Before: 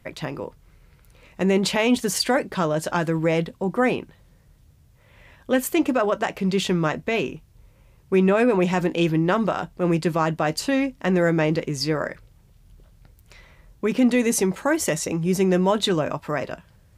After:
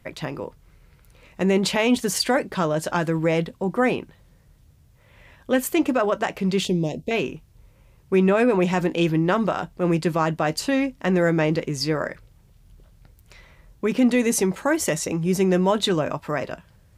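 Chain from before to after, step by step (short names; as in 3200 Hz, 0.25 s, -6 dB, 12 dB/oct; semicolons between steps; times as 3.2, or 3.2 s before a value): 6.65–7.11 Butterworth band-stop 1400 Hz, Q 0.53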